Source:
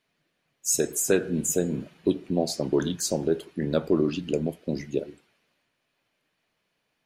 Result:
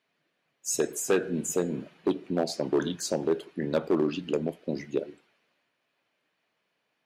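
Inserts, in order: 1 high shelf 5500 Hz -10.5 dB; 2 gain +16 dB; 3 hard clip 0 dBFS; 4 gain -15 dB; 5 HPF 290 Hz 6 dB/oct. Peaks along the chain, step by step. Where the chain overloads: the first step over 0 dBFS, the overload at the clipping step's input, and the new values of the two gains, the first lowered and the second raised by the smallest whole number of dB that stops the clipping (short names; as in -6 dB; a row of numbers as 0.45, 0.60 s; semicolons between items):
-9.5, +6.5, 0.0, -15.0, -12.0 dBFS; step 2, 6.5 dB; step 2 +9 dB, step 4 -8 dB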